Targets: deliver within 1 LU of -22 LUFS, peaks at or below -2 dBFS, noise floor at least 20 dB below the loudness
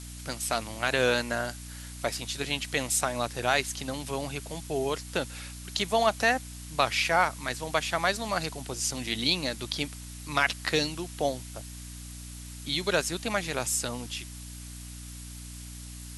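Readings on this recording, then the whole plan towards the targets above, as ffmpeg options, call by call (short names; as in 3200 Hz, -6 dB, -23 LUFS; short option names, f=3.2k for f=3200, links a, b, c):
hum 60 Hz; harmonics up to 300 Hz; hum level -41 dBFS; noise floor -42 dBFS; noise floor target -49 dBFS; loudness -29.0 LUFS; peak -7.5 dBFS; loudness target -22.0 LUFS
-> -af "bandreject=f=60:t=h:w=4,bandreject=f=120:t=h:w=4,bandreject=f=180:t=h:w=4,bandreject=f=240:t=h:w=4,bandreject=f=300:t=h:w=4"
-af "afftdn=nr=7:nf=-42"
-af "volume=7dB,alimiter=limit=-2dB:level=0:latency=1"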